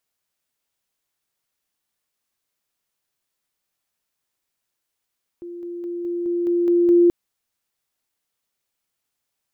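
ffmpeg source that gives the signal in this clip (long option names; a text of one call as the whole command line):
ffmpeg -f lavfi -i "aevalsrc='pow(10,(-31.5+3*floor(t/0.21))/20)*sin(2*PI*347*t)':duration=1.68:sample_rate=44100" out.wav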